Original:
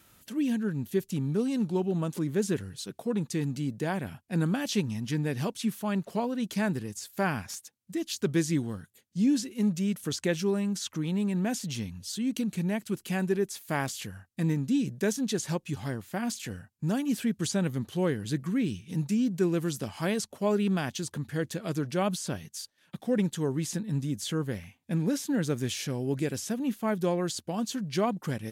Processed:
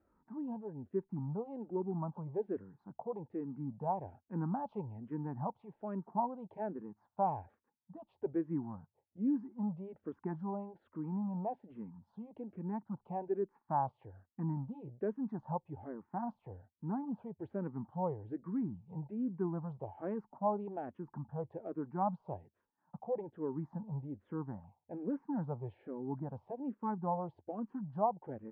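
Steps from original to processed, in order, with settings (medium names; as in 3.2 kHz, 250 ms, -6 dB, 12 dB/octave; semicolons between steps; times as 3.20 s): four-pole ladder low-pass 960 Hz, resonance 70%; barber-pole phaser -1.2 Hz; trim +3.5 dB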